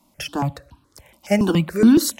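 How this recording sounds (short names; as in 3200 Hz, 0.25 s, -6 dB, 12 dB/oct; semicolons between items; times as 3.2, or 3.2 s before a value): notches that jump at a steady rate 7.1 Hz 450–2000 Hz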